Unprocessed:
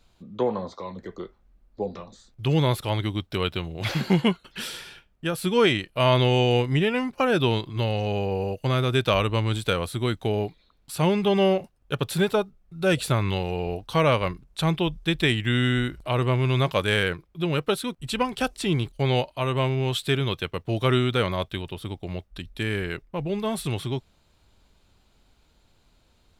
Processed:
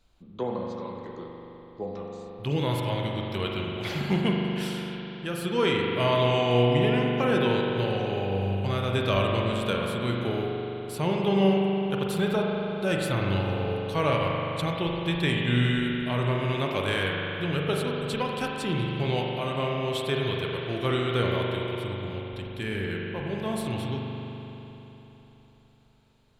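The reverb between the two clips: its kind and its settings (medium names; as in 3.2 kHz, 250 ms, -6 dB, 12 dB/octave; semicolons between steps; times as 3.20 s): spring tank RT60 3.7 s, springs 41 ms, chirp 55 ms, DRR -1.5 dB; trim -6 dB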